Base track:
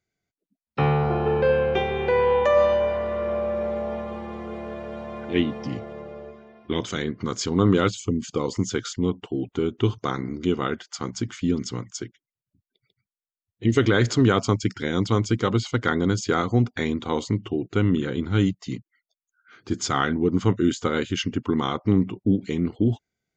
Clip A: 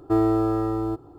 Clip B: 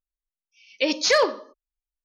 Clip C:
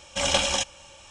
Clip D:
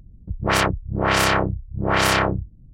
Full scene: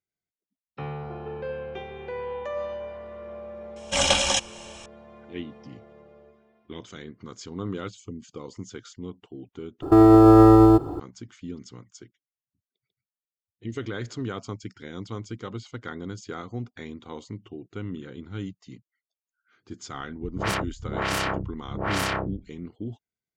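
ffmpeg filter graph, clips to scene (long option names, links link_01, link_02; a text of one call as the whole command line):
ffmpeg -i bed.wav -i cue0.wav -i cue1.wav -i cue2.wav -i cue3.wav -filter_complex "[0:a]volume=-13.5dB[link_01];[3:a]dynaudnorm=framelen=110:gausssize=3:maxgain=7.5dB[link_02];[1:a]alimiter=level_in=19.5dB:limit=-1dB:release=50:level=0:latency=1[link_03];[link_01]asplit=2[link_04][link_05];[link_04]atrim=end=9.824[link_06];[link_03]atrim=end=1.18,asetpts=PTS-STARTPTS,volume=-4.5dB[link_07];[link_05]atrim=start=10.996[link_08];[link_02]atrim=end=1.1,asetpts=PTS-STARTPTS,volume=-3dB,afade=type=in:duration=0.004:curve=hsin,afade=type=out:start_time=1.096:duration=0.004:curve=hsin,adelay=3760[link_09];[4:a]atrim=end=2.73,asetpts=PTS-STARTPTS,volume=-8.5dB,afade=type=in:duration=0.004:curve=hsin,afade=type=out:start_time=2.726:duration=0.004:curve=hsin,adelay=19940[link_10];[link_06][link_07]acrossfade=duration=0.004:curve1=hsin:curve2=hsin[link_11];[link_11][link_08]acrossfade=duration=0.004:curve1=hsin:curve2=hsin[link_12];[link_12][link_09][link_10]amix=inputs=3:normalize=0" out.wav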